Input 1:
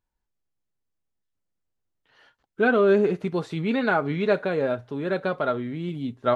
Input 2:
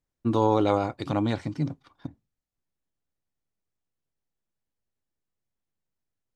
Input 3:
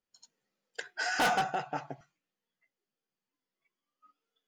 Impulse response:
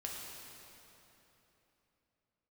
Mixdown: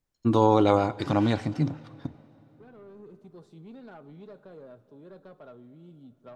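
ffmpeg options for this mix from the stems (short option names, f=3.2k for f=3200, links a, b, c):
-filter_complex "[0:a]equalizer=f=2.1k:t=o:w=1.1:g=-14.5,acrossover=split=180[a][b];[b]acompressor=threshold=-22dB:ratio=4[c];[a][c]amix=inputs=2:normalize=0,asoftclip=type=tanh:threshold=-21dB,volume=-19.5dB,asplit=2[d][e];[e]volume=-13dB[f];[1:a]volume=1.5dB,asplit=3[g][h][i];[h]volume=-17dB[j];[2:a]bandpass=f=2.4k:t=q:w=0.65:csg=0,volume=-17dB,asplit=2[k][l];[l]volume=-8dB[m];[i]apad=whole_len=280404[n];[d][n]sidechaincompress=threshold=-38dB:ratio=8:attack=16:release=1360[o];[3:a]atrim=start_sample=2205[p];[f][j][m]amix=inputs=3:normalize=0[q];[q][p]afir=irnorm=-1:irlink=0[r];[o][g][k][r]amix=inputs=4:normalize=0"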